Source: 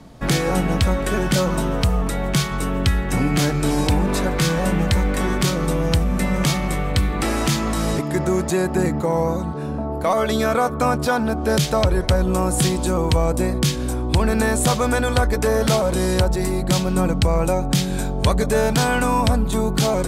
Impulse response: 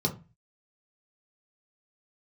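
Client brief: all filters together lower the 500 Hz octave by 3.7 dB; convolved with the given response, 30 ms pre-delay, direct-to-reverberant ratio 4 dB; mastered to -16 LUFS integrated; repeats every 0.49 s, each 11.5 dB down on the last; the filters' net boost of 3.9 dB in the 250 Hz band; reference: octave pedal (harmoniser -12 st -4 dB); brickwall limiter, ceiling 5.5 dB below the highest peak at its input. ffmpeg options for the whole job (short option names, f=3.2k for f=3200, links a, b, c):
-filter_complex "[0:a]equalizer=f=250:t=o:g=7,equalizer=f=500:t=o:g=-7,alimiter=limit=-11dB:level=0:latency=1,aecho=1:1:490|980|1470:0.266|0.0718|0.0194,asplit=2[a][b];[1:a]atrim=start_sample=2205,adelay=30[c];[b][c]afir=irnorm=-1:irlink=0,volume=-11.5dB[d];[a][d]amix=inputs=2:normalize=0,asplit=2[e][f];[f]asetrate=22050,aresample=44100,atempo=2,volume=-4dB[g];[e][g]amix=inputs=2:normalize=0,volume=-3dB"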